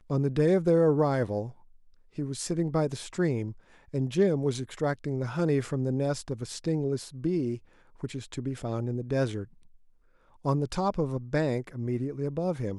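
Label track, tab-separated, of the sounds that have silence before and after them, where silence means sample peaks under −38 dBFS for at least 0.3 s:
2.180000	3.520000	sound
3.940000	7.570000	sound
8.030000	9.440000	sound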